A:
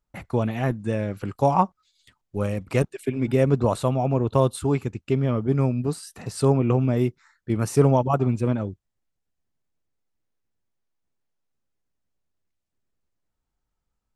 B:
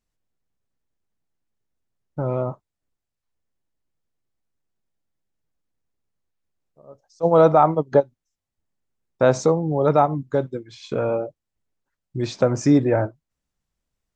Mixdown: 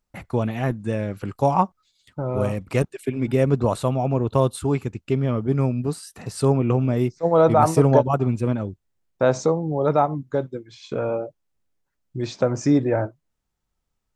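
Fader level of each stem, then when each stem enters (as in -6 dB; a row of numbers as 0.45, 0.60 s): +0.5, -2.0 dB; 0.00, 0.00 s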